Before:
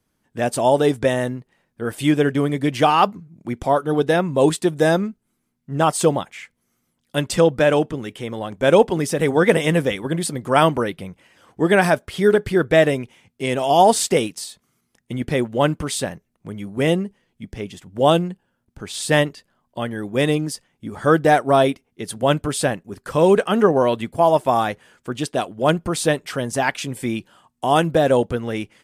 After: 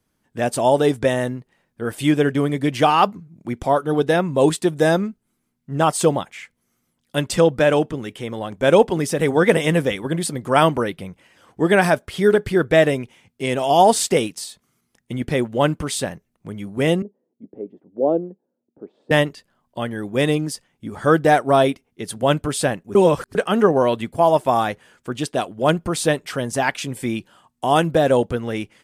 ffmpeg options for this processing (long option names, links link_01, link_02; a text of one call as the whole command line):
ffmpeg -i in.wav -filter_complex "[0:a]asettb=1/sr,asplit=3[link_01][link_02][link_03];[link_01]atrim=end=17.024[link_04];[link_02]atrim=start=17.02:end=19.11,asetpts=PTS-STARTPTS,afade=type=in:duration=0.004:curve=qsin,afade=type=out:start_time=2.086:duration=0.004:curve=qsin,asuperpass=centerf=390:order=4:qfactor=1.1[link_05];[link_03]atrim=start=19.106[link_06];[link_04][link_05]acrossfade=duration=0.004:curve1=hsin:curve2=qsin[link_07];[link_07][link_06]acrossfade=duration=0.004:curve1=qsin:curve2=hsin,asplit=3[link_08][link_09][link_10];[link_08]atrim=end=22.952[link_11];[link_09]atrim=start=22.948:end=23.352,asetpts=PTS-STARTPTS,areverse[link_12];[link_10]atrim=start=23.348[link_13];[link_11][link_12]acrossfade=duration=0.004:curve1=hsin:curve2=hsin[link_14];[link_14][link_13]acrossfade=duration=0.004:curve1=hsin:curve2=hsin" out.wav